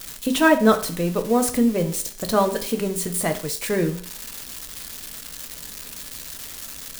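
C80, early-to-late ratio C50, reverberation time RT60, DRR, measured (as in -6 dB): 16.0 dB, 13.0 dB, 0.50 s, 6.0 dB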